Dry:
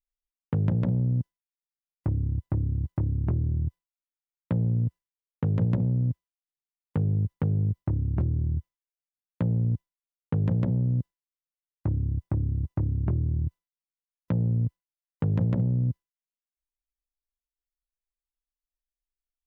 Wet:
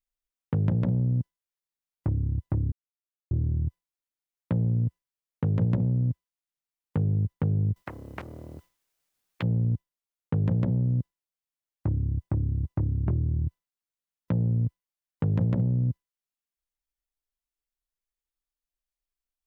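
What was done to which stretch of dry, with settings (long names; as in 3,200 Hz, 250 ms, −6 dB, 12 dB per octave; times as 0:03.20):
0:02.72–0:03.31: silence
0:07.76–0:09.43: every bin compressed towards the loudest bin 4 to 1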